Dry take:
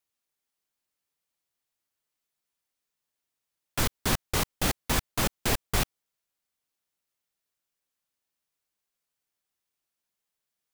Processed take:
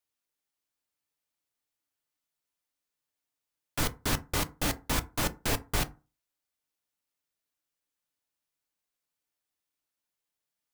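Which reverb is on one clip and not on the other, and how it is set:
feedback delay network reverb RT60 0.31 s, low-frequency decay 1.1×, high-frequency decay 0.5×, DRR 9 dB
level −3 dB

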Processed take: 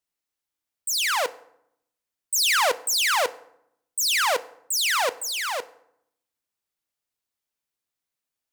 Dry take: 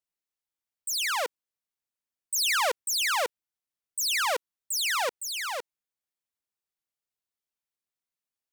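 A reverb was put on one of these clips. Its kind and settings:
feedback delay network reverb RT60 0.73 s, low-frequency decay 1.45×, high-frequency decay 0.65×, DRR 14 dB
level +4.5 dB

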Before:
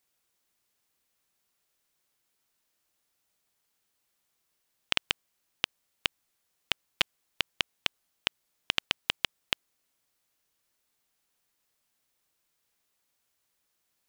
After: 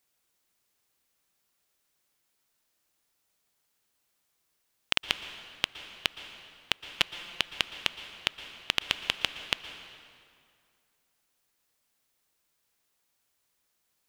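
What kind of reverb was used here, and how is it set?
dense smooth reverb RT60 2.3 s, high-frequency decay 0.75×, pre-delay 105 ms, DRR 10 dB
level +1 dB

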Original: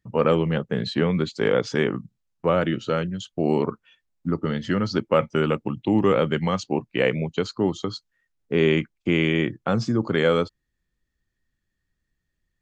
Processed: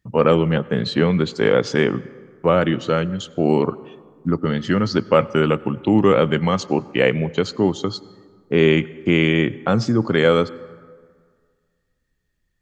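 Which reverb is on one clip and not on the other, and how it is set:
dense smooth reverb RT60 1.9 s, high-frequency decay 0.5×, pre-delay 75 ms, DRR 20 dB
level +4.5 dB

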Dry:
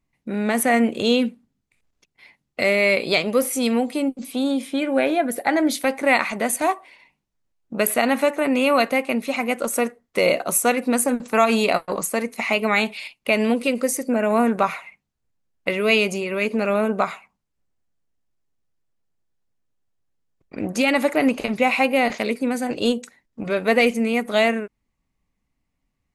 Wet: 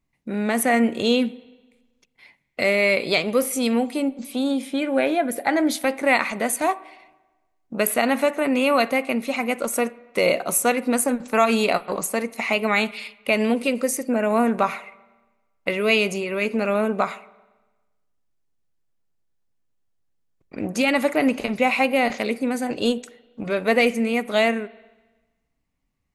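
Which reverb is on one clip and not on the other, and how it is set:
spring reverb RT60 1.2 s, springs 39/56 ms, chirp 30 ms, DRR 19.5 dB
level −1 dB

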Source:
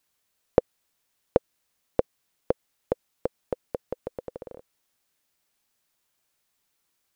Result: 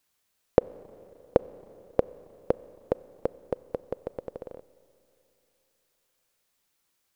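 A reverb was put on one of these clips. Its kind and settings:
four-comb reverb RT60 3.3 s, combs from 30 ms, DRR 19 dB

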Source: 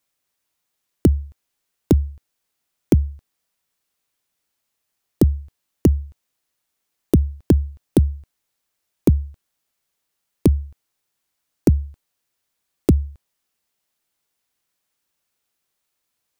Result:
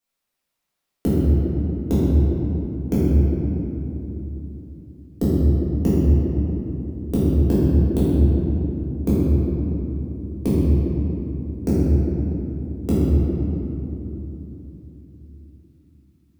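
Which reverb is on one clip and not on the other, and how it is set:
rectangular room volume 190 cubic metres, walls hard, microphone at 1.7 metres
level −11 dB

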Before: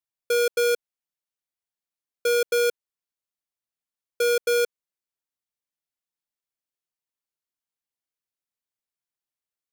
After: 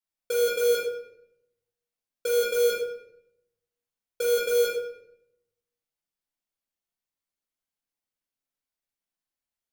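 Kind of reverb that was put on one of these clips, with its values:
rectangular room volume 200 cubic metres, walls mixed, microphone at 2 metres
level −6 dB

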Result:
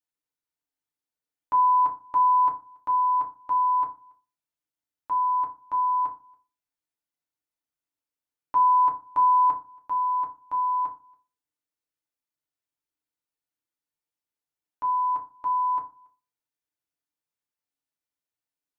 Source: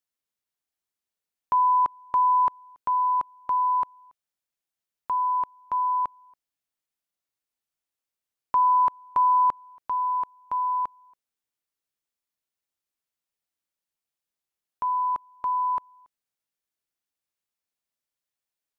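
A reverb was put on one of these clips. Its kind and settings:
feedback delay network reverb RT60 0.32 s, low-frequency decay 1.3×, high-frequency decay 0.4×, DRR −0.5 dB
level −6.5 dB

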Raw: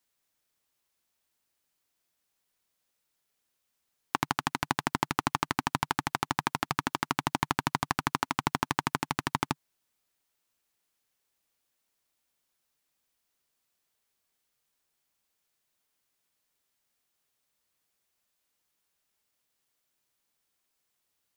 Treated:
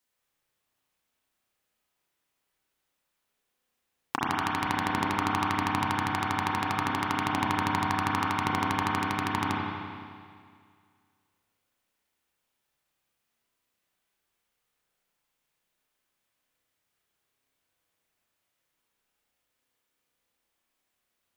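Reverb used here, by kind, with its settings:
spring reverb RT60 2.1 s, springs 30/34 ms, chirp 65 ms, DRR −4.5 dB
level −2.5 dB

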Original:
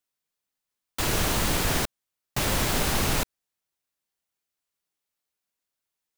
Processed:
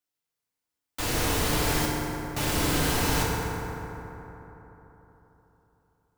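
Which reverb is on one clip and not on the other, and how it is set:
feedback delay network reverb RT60 3.8 s, high-frequency decay 0.4×, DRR −4 dB
level −5 dB

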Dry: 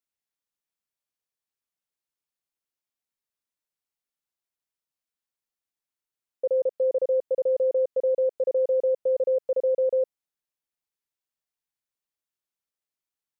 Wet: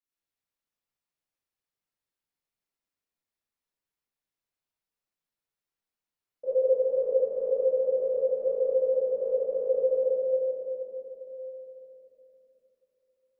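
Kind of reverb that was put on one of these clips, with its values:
rectangular room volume 210 cubic metres, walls hard, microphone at 2.6 metres
level −13.5 dB

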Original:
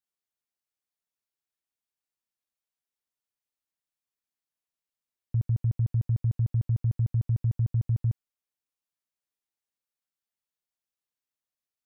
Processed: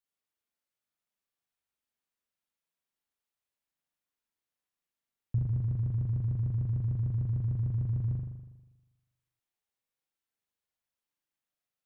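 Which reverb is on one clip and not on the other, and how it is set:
spring reverb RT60 1.1 s, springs 40 ms, chirp 25 ms, DRR −2 dB
level −2 dB

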